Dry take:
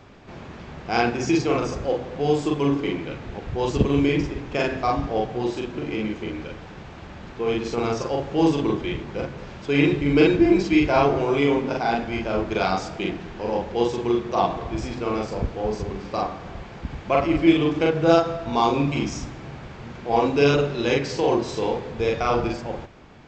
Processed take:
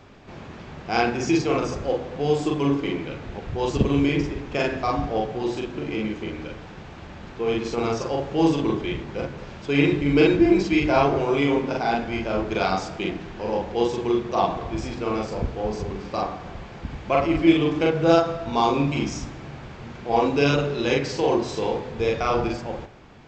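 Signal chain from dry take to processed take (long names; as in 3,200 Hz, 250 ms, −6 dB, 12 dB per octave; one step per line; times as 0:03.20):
hum removal 61.22 Hz, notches 37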